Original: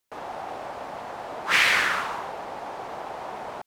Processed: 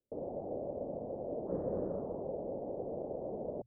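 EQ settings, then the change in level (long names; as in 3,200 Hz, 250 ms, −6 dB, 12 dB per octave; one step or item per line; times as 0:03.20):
elliptic low-pass filter 560 Hz, stop band 80 dB
mains-hum notches 60/120 Hz
+3.0 dB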